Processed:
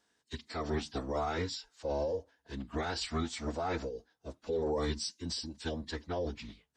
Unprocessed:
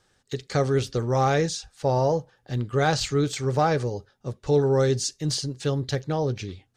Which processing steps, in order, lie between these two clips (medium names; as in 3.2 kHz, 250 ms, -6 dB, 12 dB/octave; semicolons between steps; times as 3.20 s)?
high-pass 310 Hz 6 dB/octave; peak limiter -17.5 dBFS, peak gain reduction 7 dB; formant-preserving pitch shift -10 st; trim -6.5 dB